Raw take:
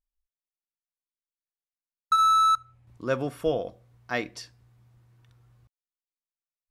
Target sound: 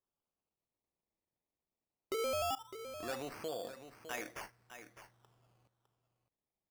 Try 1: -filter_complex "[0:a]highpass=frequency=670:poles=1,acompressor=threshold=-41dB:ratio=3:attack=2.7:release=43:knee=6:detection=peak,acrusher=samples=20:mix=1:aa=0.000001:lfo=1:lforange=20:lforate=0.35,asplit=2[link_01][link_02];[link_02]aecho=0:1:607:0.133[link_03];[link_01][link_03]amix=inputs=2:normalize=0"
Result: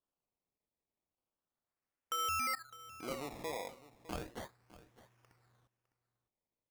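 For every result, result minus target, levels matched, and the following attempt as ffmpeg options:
sample-and-hold swept by an LFO: distortion −15 dB; echo-to-direct −6.5 dB
-filter_complex "[0:a]highpass=frequency=670:poles=1,acompressor=threshold=-41dB:ratio=3:attack=2.7:release=43:knee=6:detection=peak,acrusher=samples=20:mix=1:aa=0.000001:lfo=1:lforange=20:lforate=0.19,asplit=2[link_01][link_02];[link_02]aecho=0:1:607:0.133[link_03];[link_01][link_03]amix=inputs=2:normalize=0"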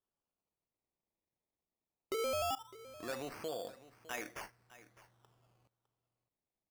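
echo-to-direct −6.5 dB
-filter_complex "[0:a]highpass=frequency=670:poles=1,acompressor=threshold=-41dB:ratio=3:attack=2.7:release=43:knee=6:detection=peak,acrusher=samples=20:mix=1:aa=0.000001:lfo=1:lforange=20:lforate=0.19,asplit=2[link_01][link_02];[link_02]aecho=0:1:607:0.282[link_03];[link_01][link_03]amix=inputs=2:normalize=0"

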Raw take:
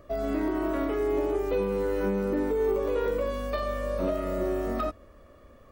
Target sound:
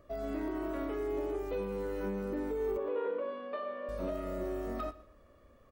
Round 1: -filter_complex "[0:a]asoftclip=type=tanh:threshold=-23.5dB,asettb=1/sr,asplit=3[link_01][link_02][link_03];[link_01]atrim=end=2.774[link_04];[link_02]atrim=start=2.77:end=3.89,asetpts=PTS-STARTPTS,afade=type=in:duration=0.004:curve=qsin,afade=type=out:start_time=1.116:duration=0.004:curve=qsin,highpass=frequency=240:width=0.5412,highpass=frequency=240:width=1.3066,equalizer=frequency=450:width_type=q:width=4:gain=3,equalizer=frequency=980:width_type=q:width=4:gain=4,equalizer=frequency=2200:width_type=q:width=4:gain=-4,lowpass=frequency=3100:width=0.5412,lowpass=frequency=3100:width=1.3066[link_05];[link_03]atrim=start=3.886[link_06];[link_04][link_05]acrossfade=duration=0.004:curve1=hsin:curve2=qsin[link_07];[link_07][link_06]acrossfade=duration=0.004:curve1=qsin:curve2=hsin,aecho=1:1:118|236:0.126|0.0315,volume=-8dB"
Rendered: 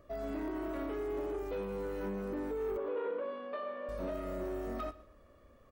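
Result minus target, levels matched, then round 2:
soft clipping: distortion +14 dB
-filter_complex "[0:a]asoftclip=type=tanh:threshold=-14.5dB,asettb=1/sr,asplit=3[link_01][link_02][link_03];[link_01]atrim=end=2.774[link_04];[link_02]atrim=start=2.77:end=3.89,asetpts=PTS-STARTPTS,afade=type=in:duration=0.004:curve=qsin,afade=type=out:start_time=1.116:duration=0.004:curve=qsin,highpass=frequency=240:width=0.5412,highpass=frequency=240:width=1.3066,equalizer=frequency=450:width_type=q:width=4:gain=3,equalizer=frequency=980:width_type=q:width=4:gain=4,equalizer=frequency=2200:width_type=q:width=4:gain=-4,lowpass=frequency=3100:width=0.5412,lowpass=frequency=3100:width=1.3066[link_05];[link_03]atrim=start=3.886[link_06];[link_04][link_05]acrossfade=duration=0.004:curve1=hsin:curve2=qsin[link_07];[link_07][link_06]acrossfade=duration=0.004:curve1=qsin:curve2=hsin,aecho=1:1:118|236:0.126|0.0315,volume=-8dB"

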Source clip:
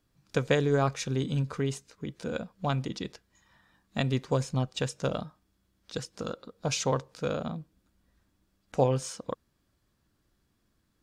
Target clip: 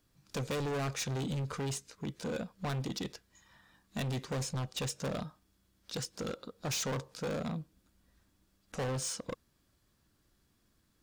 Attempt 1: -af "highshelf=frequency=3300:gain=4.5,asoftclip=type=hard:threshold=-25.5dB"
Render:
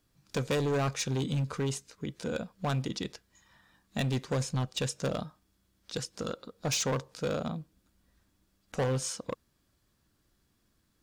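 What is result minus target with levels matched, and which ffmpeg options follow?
hard clipping: distortion −5 dB
-af "highshelf=frequency=3300:gain=4.5,asoftclip=type=hard:threshold=-32.5dB"

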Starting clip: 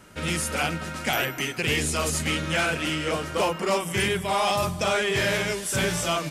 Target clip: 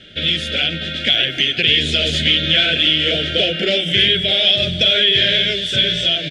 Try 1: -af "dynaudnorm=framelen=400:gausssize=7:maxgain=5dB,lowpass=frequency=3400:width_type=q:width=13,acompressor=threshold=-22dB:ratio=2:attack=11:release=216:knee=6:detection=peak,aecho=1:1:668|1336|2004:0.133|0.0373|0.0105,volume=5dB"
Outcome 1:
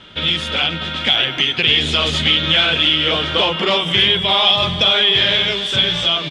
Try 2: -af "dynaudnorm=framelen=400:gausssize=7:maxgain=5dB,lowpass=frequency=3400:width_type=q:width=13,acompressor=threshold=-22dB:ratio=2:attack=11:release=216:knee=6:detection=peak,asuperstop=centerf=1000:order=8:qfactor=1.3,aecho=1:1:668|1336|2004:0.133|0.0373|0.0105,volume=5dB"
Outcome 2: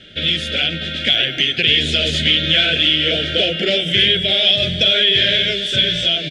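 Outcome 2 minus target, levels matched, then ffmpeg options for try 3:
echo 258 ms early
-af "dynaudnorm=framelen=400:gausssize=7:maxgain=5dB,lowpass=frequency=3400:width_type=q:width=13,acompressor=threshold=-22dB:ratio=2:attack=11:release=216:knee=6:detection=peak,asuperstop=centerf=1000:order=8:qfactor=1.3,aecho=1:1:926|1852|2778:0.133|0.0373|0.0105,volume=5dB"

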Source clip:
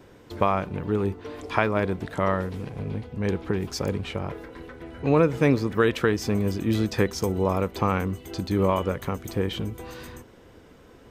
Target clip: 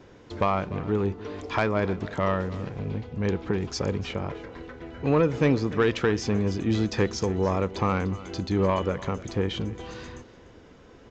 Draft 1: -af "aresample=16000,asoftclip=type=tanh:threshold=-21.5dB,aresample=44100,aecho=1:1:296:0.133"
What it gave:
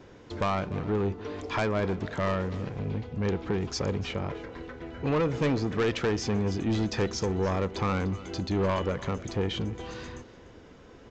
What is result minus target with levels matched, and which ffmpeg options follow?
soft clipping: distortion +9 dB
-af "aresample=16000,asoftclip=type=tanh:threshold=-12.5dB,aresample=44100,aecho=1:1:296:0.133"

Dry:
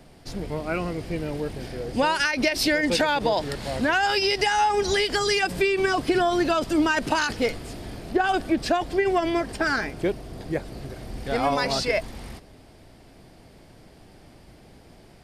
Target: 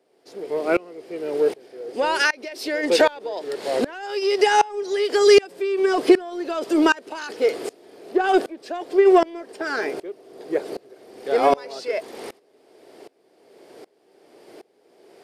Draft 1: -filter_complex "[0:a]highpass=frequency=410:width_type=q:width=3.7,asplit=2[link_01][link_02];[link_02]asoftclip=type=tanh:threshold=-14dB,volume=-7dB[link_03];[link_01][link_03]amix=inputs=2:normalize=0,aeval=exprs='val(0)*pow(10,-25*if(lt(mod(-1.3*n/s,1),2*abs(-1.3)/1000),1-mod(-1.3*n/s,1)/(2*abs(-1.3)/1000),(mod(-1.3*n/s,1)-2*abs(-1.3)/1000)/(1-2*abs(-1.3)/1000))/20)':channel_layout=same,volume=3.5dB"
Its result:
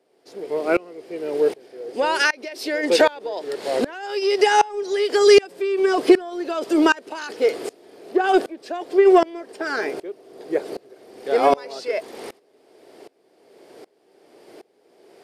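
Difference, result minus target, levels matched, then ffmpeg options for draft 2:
soft clipping: distortion −6 dB
-filter_complex "[0:a]highpass=frequency=410:width_type=q:width=3.7,asplit=2[link_01][link_02];[link_02]asoftclip=type=tanh:threshold=-21dB,volume=-7dB[link_03];[link_01][link_03]amix=inputs=2:normalize=0,aeval=exprs='val(0)*pow(10,-25*if(lt(mod(-1.3*n/s,1),2*abs(-1.3)/1000),1-mod(-1.3*n/s,1)/(2*abs(-1.3)/1000),(mod(-1.3*n/s,1)-2*abs(-1.3)/1000)/(1-2*abs(-1.3)/1000))/20)':channel_layout=same,volume=3.5dB"

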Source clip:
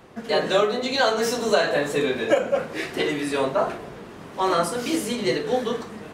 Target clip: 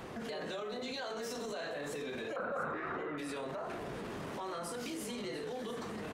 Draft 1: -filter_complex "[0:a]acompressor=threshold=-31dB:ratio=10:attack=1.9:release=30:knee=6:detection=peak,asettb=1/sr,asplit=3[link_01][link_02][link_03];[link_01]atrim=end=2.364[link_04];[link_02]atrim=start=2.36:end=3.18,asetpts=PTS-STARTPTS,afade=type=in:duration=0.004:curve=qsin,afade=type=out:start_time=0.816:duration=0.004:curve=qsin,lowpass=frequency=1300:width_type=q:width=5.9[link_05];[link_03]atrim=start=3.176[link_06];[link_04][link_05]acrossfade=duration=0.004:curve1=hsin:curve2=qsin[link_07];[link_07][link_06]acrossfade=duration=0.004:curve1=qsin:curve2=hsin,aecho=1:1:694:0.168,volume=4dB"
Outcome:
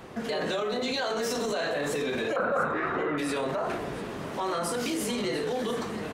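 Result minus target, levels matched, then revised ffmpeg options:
downward compressor: peak gain reduction −11 dB
-filter_complex "[0:a]acompressor=threshold=-43dB:ratio=10:attack=1.9:release=30:knee=6:detection=peak,asettb=1/sr,asplit=3[link_01][link_02][link_03];[link_01]atrim=end=2.364[link_04];[link_02]atrim=start=2.36:end=3.18,asetpts=PTS-STARTPTS,afade=type=in:duration=0.004:curve=qsin,afade=type=out:start_time=0.816:duration=0.004:curve=qsin,lowpass=frequency=1300:width_type=q:width=5.9[link_05];[link_03]atrim=start=3.176[link_06];[link_04][link_05]acrossfade=duration=0.004:curve1=hsin:curve2=qsin[link_07];[link_07][link_06]acrossfade=duration=0.004:curve1=qsin:curve2=hsin,aecho=1:1:694:0.168,volume=4dB"

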